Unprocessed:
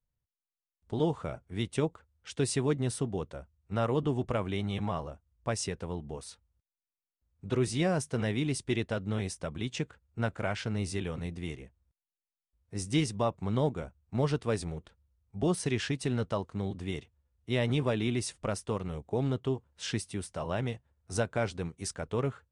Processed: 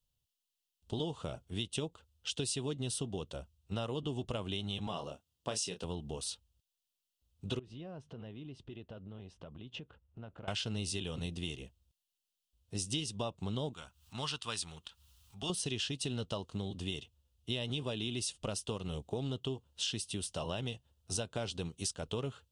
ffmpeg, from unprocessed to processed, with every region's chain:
ffmpeg -i in.wav -filter_complex "[0:a]asettb=1/sr,asplit=3[link_01][link_02][link_03];[link_01]atrim=end=4.874[link_04];[link_02]atrim=start=4.87:end=5.84,asetpts=PTS-STARTPTS,afade=type=in:duration=0.004:curve=qsin,afade=type=out:start_time=0.966:duration=0.004:curve=qsin,highpass=170,asplit=2[link_05][link_06];[link_06]adelay=28,volume=-8dB[link_07];[link_05][link_07]amix=inputs=2:normalize=0,atrim=end_sample=42777[link_08];[link_03]atrim=start=5.836[link_09];[link_04][link_08]acrossfade=duration=0.004:curve1=hsin:curve2=qsin[link_10];[link_10][link_09]acrossfade=duration=0.004:curve1=qsin:curve2=hsin,asettb=1/sr,asplit=3[link_11][link_12][link_13];[link_11]atrim=end=7.594[link_14];[link_12]atrim=start=7.59:end=10.48,asetpts=PTS-STARTPTS,afade=type=in:duration=0.004:curve=qsin,afade=type=out:start_time=2.886:duration=0.004:curve=qsin,lowpass=1600,acompressor=threshold=-47dB:ratio=4:attack=3.2:release=140:knee=1:detection=peak[link_15];[link_13]atrim=start=10.476[link_16];[link_14][link_15]acrossfade=duration=0.004:curve1=hsin:curve2=qsin[link_17];[link_17][link_16]acrossfade=duration=0.004:curve1=qsin:curve2=hsin,asettb=1/sr,asplit=3[link_18][link_19][link_20];[link_18]atrim=end=13.734[link_21];[link_19]atrim=start=13.73:end=15.5,asetpts=PTS-STARTPTS,afade=type=in:duration=0.004:curve=qsin,afade=type=out:start_time=1.766:duration=0.004:curve=qsin,lowshelf=frequency=770:width_type=q:width=1.5:gain=-12,acompressor=mode=upward:threshold=-49dB:ratio=2.5:attack=3.2:release=140:knee=2.83:detection=peak[link_22];[link_20]atrim=start=15.496[link_23];[link_21][link_22]acrossfade=duration=0.004:curve1=hsin:curve2=qsin[link_24];[link_24][link_23]acrossfade=duration=0.004:curve1=qsin:curve2=hsin,highshelf=frequency=2400:width_type=q:width=3:gain=7,bandreject=frequency=2300:width=9.8,acompressor=threshold=-34dB:ratio=5" out.wav

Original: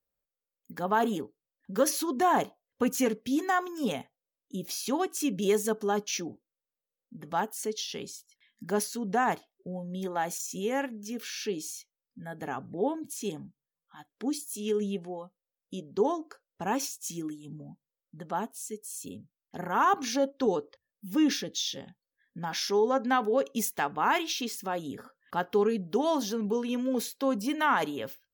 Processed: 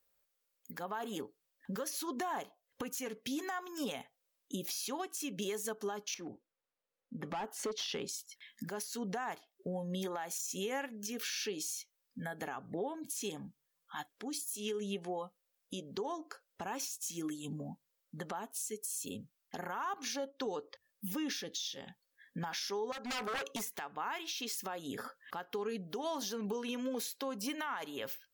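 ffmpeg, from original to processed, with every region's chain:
ffmpeg -i in.wav -filter_complex "[0:a]asettb=1/sr,asplit=3[link_01][link_02][link_03];[link_01]atrim=end=6.144[link_04];[link_02]atrim=start=6.14:end=8.09,asetpts=PTS-STARTPTS,afade=type=in:duration=0.004:curve=qsin,afade=type=out:start_time=1.946:duration=0.004:curve=qsin,volume=31dB,asoftclip=hard,volume=-31dB,lowpass=frequency=1500:poles=1[link_05];[link_03]atrim=start=8.086[link_06];[link_04][link_05]acrossfade=duration=0.004:curve1=hsin:curve2=qsin[link_07];[link_07][link_06]acrossfade=duration=0.004:curve1=qsin:curve2=hsin,asettb=1/sr,asplit=3[link_08][link_09][link_10];[link_08]atrim=end=22.924[link_11];[link_09]atrim=start=22.92:end=23.77,asetpts=PTS-STARTPTS,afade=type=in:duration=0.004:curve=qsin,afade=type=out:start_time=0.846:duration=0.004:curve=qsin,acrossover=split=590|1900[link_12][link_13][link_14];[link_12]acompressor=threshold=-32dB:ratio=4[link_15];[link_13]acompressor=threshold=-28dB:ratio=4[link_16];[link_14]acompressor=threshold=-44dB:ratio=4[link_17];[link_15][link_16][link_17]amix=inputs=3:normalize=0,aeval=exprs='0.0282*(abs(mod(val(0)/0.0282+3,4)-2)-1)':channel_layout=same[link_18];[link_10]atrim=start=23.766[link_19];[link_11][link_18]acrossfade=duration=0.004:curve1=hsin:curve2=qsin[link_20];[link_20][link_19]acrossfade=duration=0.004:curve1=qsin:curve2=hsin,lowshelf=frequency=480:gain=-10.5,acompressor=threshold=-46dB:ratio=4,alimiter=level_in=15dB:limit=-24dB:level=0:latency=1:release=204,volume=-15dB,volume=10.5dB" out.wav

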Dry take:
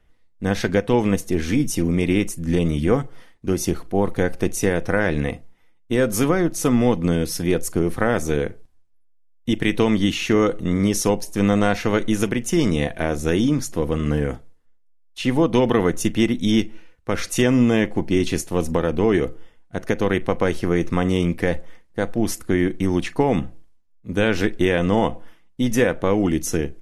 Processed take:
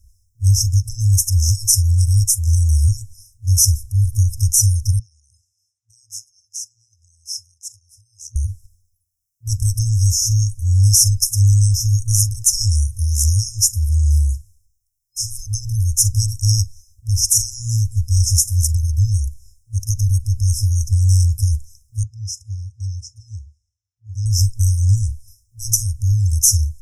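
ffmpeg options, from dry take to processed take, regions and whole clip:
ffmpeg -i in.wav -filter_complex "[0:a]asettb=1/sr,asplit=3[link_01][link_02][link_03];[link_01]atrim=end=4.994[link_04];[link_02]atrim=start=4.99:end=8.36,asetpts=PTS-STARTPTS,afade=type=in:duration=0.004:curve=qsin,afade=type=out:start_time=3.366:duration=0.004:curve=qsin,acompressor=threshold=-33dB:ratio=8:attack=3.2:release=140:knee=1:detection=peak,highpass=390,lowpass=5100[link_05];[link_03]atrim=start=8.356[link_06];[link_04][link_05]acrossfade=duration=0.004:curve1=hsin:curve2=qsin[link_07];[link_07][link_06]acrossfade=duration=0.004:curve1=qsin:curve2=hsin,asettb=1/sr,asplit=3[link_08][link_09][link_10];[link_08]atrim=end=22.034[link_11];[link_09]atrim=start=22.03:end=24.26,asetpts=PTS-STARTPTS,afade=type=in:duration=0.004:curve=qsin,afade=type=out:start_time=2.226:duration=0.004:curve=qsin,asplit=2[link_12][link_13];[link_13]highpass=frequency=720:poles=1,volume=10dB,asoftclip=type=tanh:threshold=-5.5dB[link_14];[link_12][link_14]amix=inputs=2:normalize=0,lowpass=frequency=1200:poles=1,volume=-6dB,highpass=130,lowpass=4700[link_15];[link_10]atrim=start=24.256[link_16];[link_11][link_15]acrossfade=duration=0.004:curve1=hsin:curve2=qsin[link_17];[link_17][link_16]acrossfade=duration=0.004:curve1=qsin:curve2=hsin,afftfilt=real='re*(1-between(b*sr/4096,110,5100))':imag='im*(1-between(b*sr/4096,110,5100))':win_size=4096:overlap=0.75,highpass=frequency=65:poles=1,alimiter=level_in=19dB:limit=-1dB:release=50:level=0:latency=1,volume=-1dB" out.wav

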